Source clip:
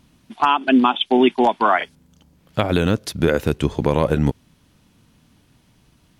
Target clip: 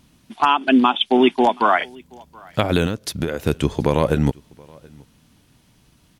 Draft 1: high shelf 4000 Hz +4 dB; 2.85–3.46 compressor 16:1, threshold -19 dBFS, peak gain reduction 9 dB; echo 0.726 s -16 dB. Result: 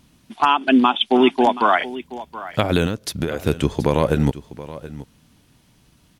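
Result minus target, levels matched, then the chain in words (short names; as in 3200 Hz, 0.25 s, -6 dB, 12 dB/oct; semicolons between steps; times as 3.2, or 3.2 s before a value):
echo-to-direct +10.5 dB
high shelf 4000 Hz +4 dB; 2.85–3.46 compressor 16:1, threshold -19 dBFS, peak gain reduction 9 dB; echo 0.726 s -26.5 dB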